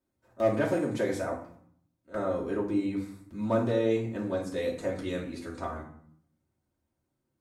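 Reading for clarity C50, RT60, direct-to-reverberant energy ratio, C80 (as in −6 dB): 7.5 dB, 0.60 s, −5.5 dB, 11.0 dB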